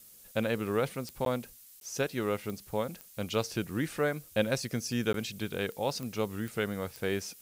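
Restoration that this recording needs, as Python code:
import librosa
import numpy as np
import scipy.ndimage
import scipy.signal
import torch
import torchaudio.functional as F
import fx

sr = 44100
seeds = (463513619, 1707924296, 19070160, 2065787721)

y = fx.fix_declick_ar(x, sr, threshold=10.0)
y = fx.fix_interpolate(y, sr, at_s=(1.25, 1.8, 5.13), length_ms=12.0)
y = fx.noise_reduce(y, sr, print_start_s=1.42, print_end_s=1.92, reduce_db=23.0)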